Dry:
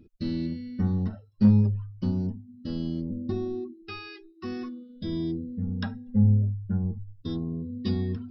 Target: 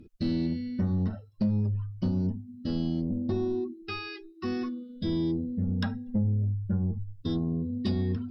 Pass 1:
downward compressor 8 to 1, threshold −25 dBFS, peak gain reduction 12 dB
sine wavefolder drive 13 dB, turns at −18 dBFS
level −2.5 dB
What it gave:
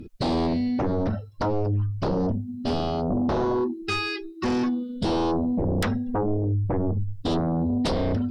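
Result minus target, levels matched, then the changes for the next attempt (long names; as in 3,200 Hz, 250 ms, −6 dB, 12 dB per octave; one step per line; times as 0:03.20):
sine wavefolder: distortion +23 dB
change: sine wavefolder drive 2 dB, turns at −18 dBFS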